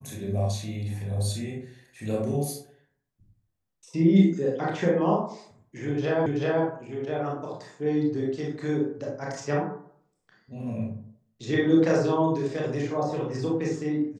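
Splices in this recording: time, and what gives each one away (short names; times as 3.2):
6.26 repeat of the last 0.38 s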